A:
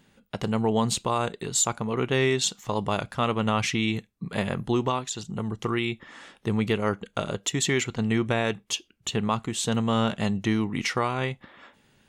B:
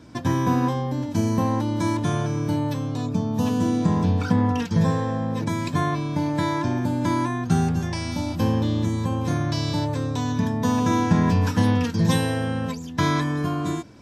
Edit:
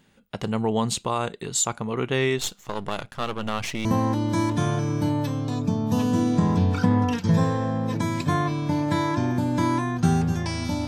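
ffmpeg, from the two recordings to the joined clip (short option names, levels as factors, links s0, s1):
-filter_complex "[0:a]asettb=1/sr,asplit=3[s0][s1][s2];[s0]atrim=end=2.384[s3];[s1]atrim=start=2.38:end=3.85,asetpts=PTS-STARTPTS,afade=t=in:d=0.004:c=qsin,afade=t=out:st=1.466:d=0.004:c=qsin,aeval=exprs='if(lt(val(0),0),0.251*val(0),val(0))':c=same[s4];[s2]atrim=start=3.846[s5];[s3][s4]acrossfade=d=0.004:c1=hsin:c2=qsin[s6];[s6][s5]acrossfade=d=0.004:c1=qsin:c2=hsin,apad=whole_dur=10.87,atrim=end=10.87,atrim=end=3.852[s7];[1:a]atrim=start=1.318:end=8.34[s8];[s7][s8]acrossfade=d=0.004:c1=hsin:c2=hsin"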